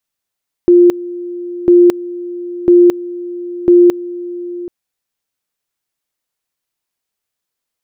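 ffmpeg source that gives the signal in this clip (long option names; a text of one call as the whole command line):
ffmpeg -f lavfi -i "aevalsrc='pow(10,(-3-18*gte(mod(t,1),0.22))/20)*sin(2*PI*351*t)':duration=4:sample_rate=44100" out.wav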